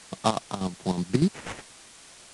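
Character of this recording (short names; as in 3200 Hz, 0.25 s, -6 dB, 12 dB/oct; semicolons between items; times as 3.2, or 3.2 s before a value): aliases and images of a low sample rate 4500 Hz, jitter 20%; chopped level 8.2 Hz, depth 65%, duty 50%; a quantiser's noise floor 8-bit, dither triangular; AAC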